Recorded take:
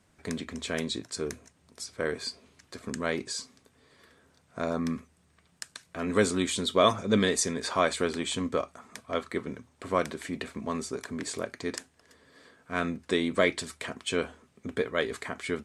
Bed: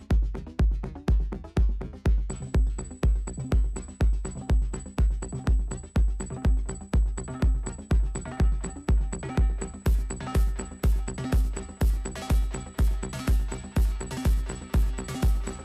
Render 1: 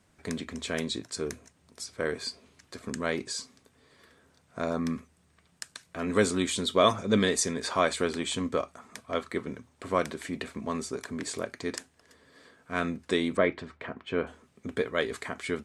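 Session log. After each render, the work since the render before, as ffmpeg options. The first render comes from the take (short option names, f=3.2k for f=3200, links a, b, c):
-filter_complex "[0:a]asettb=1/sr,asplit=3[a][b][c];[a]atrim=end=13.374[d];[b]atrim=start=13.37:end=14.27,asetpts=PTS-STARTPTS,afade=t=in:d=0.004:c=qsin,afade=t=out:st=0.896:d=0.004:c=qsin,lowpass=1.9k[e];[c]atrim=start=14.266[f];[d][e]acrossfade=d=0.004:c1=hsin:c2=qsin[g];[g][f]acrossfade=d=0.004:c1=qsin:c2=hsin"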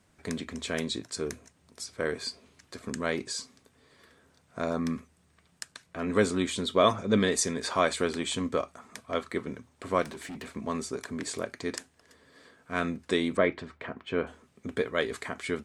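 -filter_complex "[0:a]asettb=1/sr,asplit=3[a][b][c];[a]atrim=end=5.644[d];[b]atrim=start=5.64:end=7.32,asetpts=PTS-STARTPTS,afade=t=in:d=0.004:c=qsin,afade=t=out:st=1.676:d=0.004:c=qsin,highshelf=f=4.2k:g=-6[e];[c]atrim=start=7.316[f];[d][e]acrossfade=d=0.004:c1=hsin:c2=qsin[g];[g][f]acrossfade=d=0.004:c1=qsin:c2=hsin,asettb=1/sr,asplit=3[h][i][j];[h]atrim=end=10.024[k];[i]atrim=start=10.02:end=10.53,asetpts=PTS-STARTPTS,afade=t=in:d=0.004:c=qsin,afade=t=out:st=0.506:d=0.004:c=qsin,asoftclip=type=hard:threshold=-37dB[l];[j]atrim=start=10.526[m];[k][l]acrossfade=d=0.004:c1=hsin:c2=qsin[n];[n][m]acrossfade=d=0.004:c1=qsin:c2=hsin"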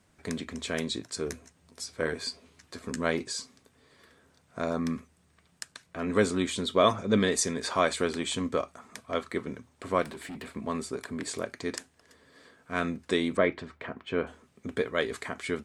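-filter_complex "[0:a]asettb=1/sr,asplit=3[a][b][c];[a]atrim=end=1.264[d];[b]atrim=start=1.26:end=3.24,asetpts=PTS-STARTPTS,afade=t=in:d=0.004:c=qsin,afade=t=out:st=1.976:d=0.004:c=qsin,asplit=2[e][f];[f]adelay=12,volume=-8dB[g];[e][g]amix=inputs=2:normalize=0,atrim=end_sample=87318[h];[c]atrim=start=3.236[i];[d][h]acrossfade=d=0.004:c1=hsin:c2=qsin[j];[j][i]acrossfade=d=0.004:c1=qsin:c2=hsin,asettb=1/sr,asplit=3[k][l][m];[k]atrim=end=9.924[n];[l]atrim=start=9.92:end=11.28,asetpts=PTS-STARTPTS,afade=t=in:d=0.004:c=qsin,afade=t=out:st=1.356:d=0.004:c=qsin,equalizer=f=6.1k:t=o:w=0.34:g=-7[o];[m]atrim=start=11.276[p];[n][o]acrossfade=d=0.004:c1=hsin:c2=qsin[q];[q][p]acrossfade=d=0.004:c1=qsin:c2=hsin"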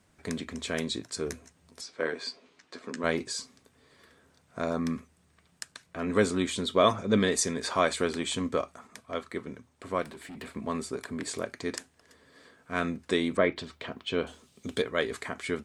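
-filter_complex "[0:a]asettb=1/sr,asplit=3[a][b][c];[a]atrim=end=1.814[d];[b]atrim=start=1.81:end=3.04,asetpts=PTS-STARTPTS,afade=t=in:d=0.004:c=qsin,afade=t=out:st=1.226:d=0.004:c=qsin,highpass=260,lowpass=5.4k[e];[c]atrim=start=3.036[f];[d][e]acrossfade=d=0.004:c1=hsin:c2=qsin[g];[g][f]acrossfade=d=0.004:c1=qsin:c2=hsin,asettb=1/sr,asplit=3[h][i][j];[h]atrim=end=13.564[k];[i]atrim=start=13.56:end=14.82,asetpts=PTS-STARTPTS,afade=t=in:d=0.004:c=qsin,afade=t=out:st=1.256:d=0.004:c=qsin,highshelf=f=2.6k:t=q:w=1.5:g=8.5[l];[j]atrim=start=14.816[m];[k][l]acrossfade=d=0.004:c1=hsin:c2=qsin[n];[n][m]acrossfade=d=0.004:c1=qsin:c2=hsin,asplit=3[o][p][q];[o]atrim=end=8.872[r];[p]atrim=start=8.868:end=10.372,asetpts=PTS-STARTPTS,volume=-3.5dB[s];[q]atrim=start=10.368[t];[r][s]acrossfade=d=0.004:c1=hsin:c2=hsin[u];[u][t]acrossfade=d=0.004:c1=hsin:c2=hsin"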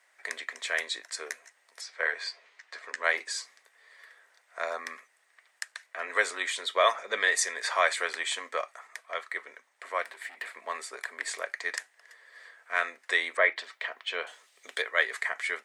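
-af "highpass=f=580:w=0.5412,highpass=f=580:w=1.3066,equalizer=f=1.9k:w=3.1:g=12.5"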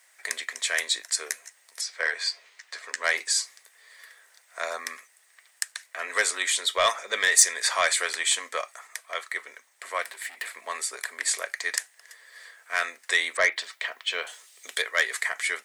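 -af "asoftclip=type=tanh:threshold=-13.5dB,crystalizer=i=3.5:c=0"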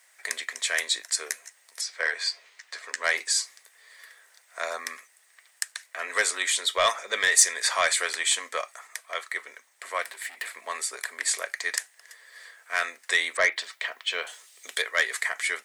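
-af "asoftclip=type=tanh:threshold=-4.5dB"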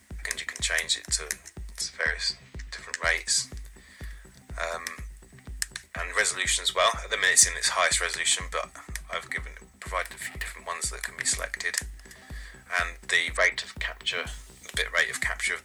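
-filter_complex "[1:a]volume=-17.5dB[a];[0:a][a]amix=inputs=2:normalize=0"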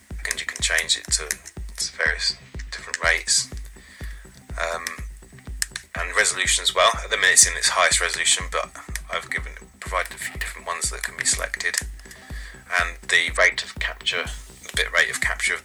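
-af "volume=5.5dB,alimiter=limit=-2dB:level=0:latency=1"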